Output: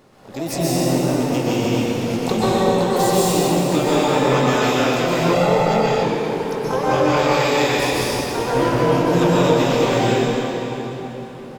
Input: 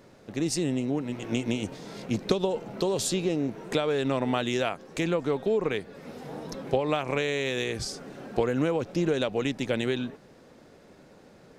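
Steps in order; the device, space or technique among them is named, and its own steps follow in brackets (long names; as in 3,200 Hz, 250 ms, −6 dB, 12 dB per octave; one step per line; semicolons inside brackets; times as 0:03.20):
shimmer-style reverb (pitch-shifted copies added +12 semitones −5 dB; convolution reverb RT60 3.9 s, pre-delay 118 ms, DRR −8.5 dB)
0:05.33–0:06.03: comb filter 1.5 ms, depth 65%
double-tracking delay 23 ms −10.5 dB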